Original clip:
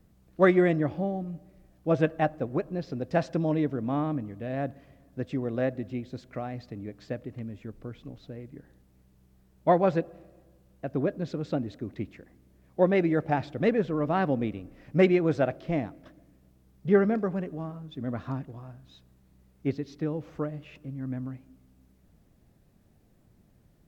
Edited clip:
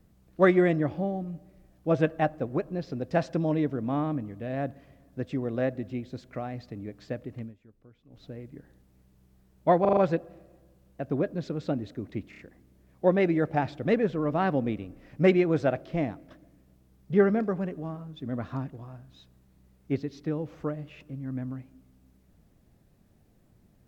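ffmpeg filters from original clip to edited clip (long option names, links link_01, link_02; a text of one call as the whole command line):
ffmpeg -i in.wav -filter_complex "[0:a]asplit=10[link_01][link_02][link_03][link_04][link_05][link_06][link_07][link_08][link_09][link_10];[link_01]atrim=end=7.55,asetpts=PTS-STARTPTS,afade=type=out:start_time=7.42:duration=0.13:silence=0.158489[link_11];[link_02]atrim=start=7.55:end=8.09,asetpts=PTS-STARTPTS,volume=-16dB[link_12];[link_03]atrim=start=8.09:end=9.852,asetpts=PTS-STARTPTS,afade=type=in:duration=0.13:silence=0.158489[link_13];[link_04]atrim=start=9.808:end=9.852[link_14];[link_05]atrim=start=9.808:end=9.852[link_15];[link_06]atrim=start=9.808:end=9.852[link_16];[link_07]atrim=start=9.808:end=12.172[link_17];[link_08]atrim=start=12.138:end=12.172[link_18];[link_09]atrim=start=12.138:end=12.172[link_19];[link_10]atrim=start=12.138[link_20];[link_11][link_12][link_13]concat=n=3:v=0:a=1[link_21];[link_21][link_14]acrossfade=duration=0.004:curve1=hsin:curve2=hsin[link_22];[link_22][link_15]acrossfade=duration=0.004:curve1=hsin:curve2=hsin[link_23];[link_23][link_16]acrossfade=duration=0.004:curve1=hsin:curve2=hsin[link_24];[link_24][link_17]acrossfade=duration=0.004:curve1=hsin:curve2=hsin[link_25];[link_25][link_18]acrossfade=duration=0.004:curve1=hsin:curve2=hsin[link_26];[link_26][link_19]acrossfade=duration=0.004:curve1=hsin:curve2=hsin[link_27];[link_27][link_20]acrossfade=duration=0.004:curve1=hsin:curve2=hsin" out.wav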